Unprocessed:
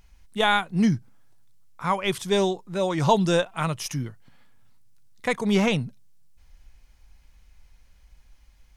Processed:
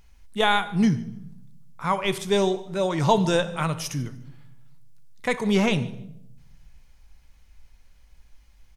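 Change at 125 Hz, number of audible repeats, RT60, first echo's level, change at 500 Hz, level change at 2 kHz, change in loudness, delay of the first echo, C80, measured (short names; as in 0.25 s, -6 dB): +0.5 dB, 1, 0.75 s, -22.5 dB, +0.5 dB, 0.0 dB, 0.0 dB, 0.148 s, 16.5 dB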